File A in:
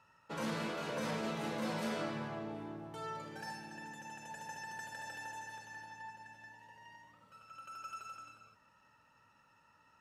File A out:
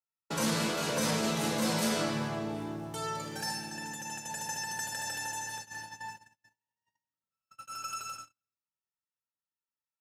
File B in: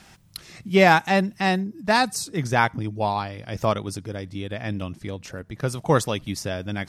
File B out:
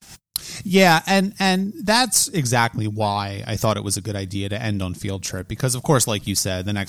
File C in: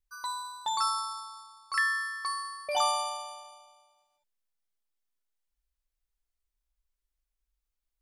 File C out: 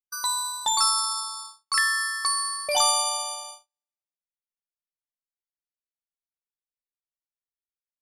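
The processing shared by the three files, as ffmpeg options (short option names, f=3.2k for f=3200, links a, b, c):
-filter_complex "[0:a]agate=range=-45dB:threshold=-50dB:ratio=16:detection=peak,bass=f=250:g=3,treble=f=4k:g=13,asplit=2[a][b];[b]acompressor=threshold=-30dB:ratio=6,volume=2dB[c];[a][c]amix=inputs=2:normalize=0,aeval=exprs='(tanh(0.891*val(0)+0.3)-tanh(0.3))/0.891':c=same"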